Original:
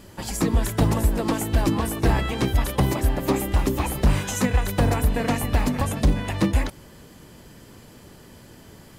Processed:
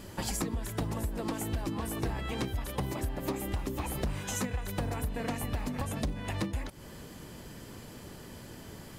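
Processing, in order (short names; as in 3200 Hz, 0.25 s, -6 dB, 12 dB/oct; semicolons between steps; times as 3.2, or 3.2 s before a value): compressor 10:1, threshold -30 dBFS, peak gain reduction 16.5 dB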